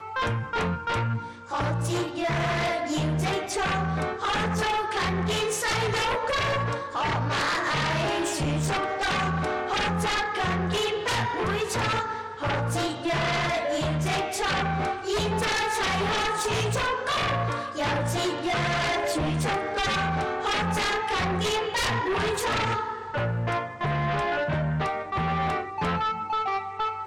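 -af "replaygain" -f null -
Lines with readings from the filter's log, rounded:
track_gain = +8.6 dB
track_peak = 0.059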